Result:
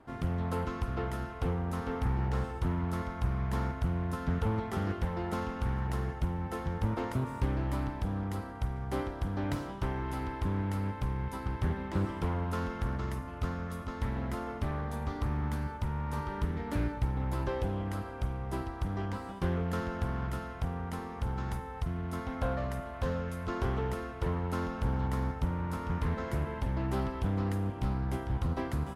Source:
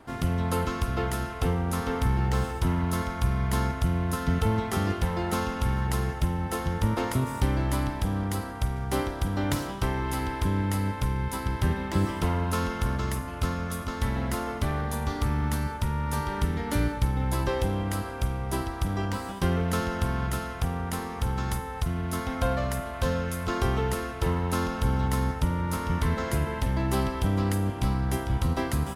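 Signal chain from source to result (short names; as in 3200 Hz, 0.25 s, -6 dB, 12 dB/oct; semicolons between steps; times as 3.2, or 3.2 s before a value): high shelf 2900 Hz -10 dB; Doppler distortion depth 0.29 ms; gain -5.5 dB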